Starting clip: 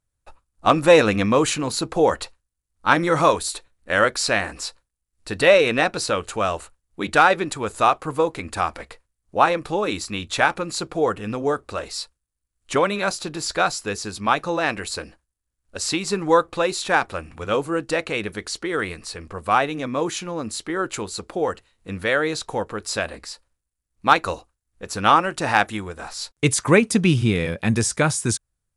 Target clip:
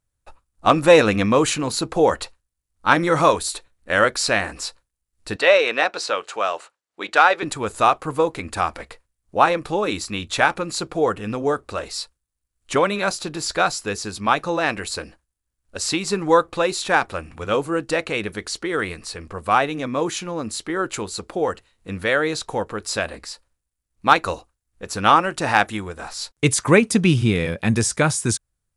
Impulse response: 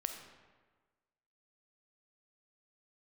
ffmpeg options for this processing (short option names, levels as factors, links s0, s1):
-filter_complex "[0:a]asettb=1/sr,asplit=3[s0][s1][s2];[s0]atrim=end=5.364[s3];[s1]atrim=start=5.36:end=7.43,asetpts=PTS-STARTPTS,afade=t=in:d=0.004:c=qsin,afade=t=out:st=2.066:d=0.004:c=qsin,highpass=490,lowpass=6100[s4];[s2]atrim=start=7.426[s5];[s3][s4]acrossfade=d=0.004:c1=hsin:c2=qsin[s6];[s6][s5]acrossfade=d=0.004:c1=qsin:c2=hsin,volume=1.12"